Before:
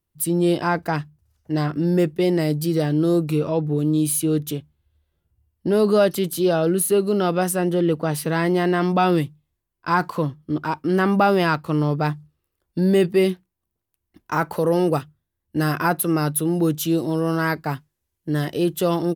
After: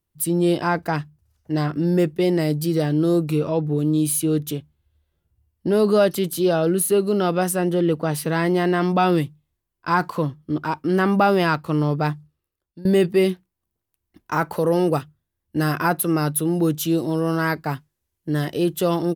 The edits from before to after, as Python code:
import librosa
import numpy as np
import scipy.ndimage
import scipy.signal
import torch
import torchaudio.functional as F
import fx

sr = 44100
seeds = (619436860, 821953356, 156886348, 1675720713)

y = fx.edit(x, sr, fx.fade_out_to(start_s=12.07, length_s=0.78, floor_db=-22.0), tone=tone)